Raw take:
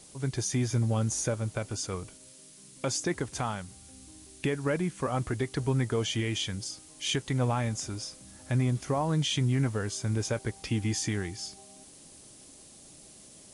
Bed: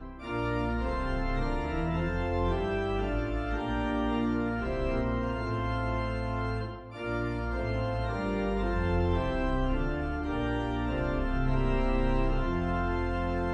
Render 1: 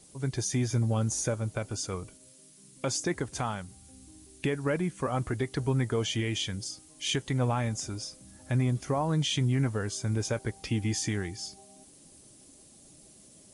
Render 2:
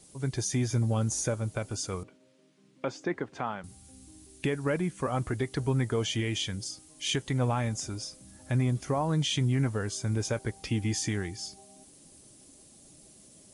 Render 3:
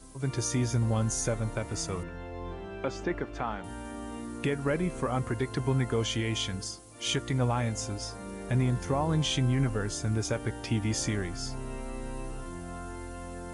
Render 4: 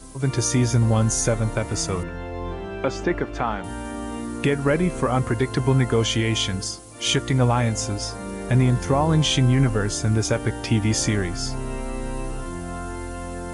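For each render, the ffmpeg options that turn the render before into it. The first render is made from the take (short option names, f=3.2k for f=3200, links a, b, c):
-af "afftdn=nr=6:nf=-53"
-filter_complex "[0:a]asettb=1/sr,asplit=3[a][b][c];[a]atrim=end=2.034[d];[b]atrim=start=2.03:end=3.64,asetpts=PTS-STARTPTS,afade=t=in:d=0.004:c=qsin,afade=t=out:st=1.606:d=0.004:c=qsin,highpass=200,lowpass=2.5k[e];[c]atrim=start=3.636[f];[d][e]acrossfade=d=0.004:c1=hsin:c2=qsin[g];[g][f]acrossfade=d=0.004:c1=qsin:c2=hsin"
-filter_complex "[1:a]volume=-10.5dB[a];[0:a][a]amix=inputs=2:normalize=0"
-af "volume=8.5dB"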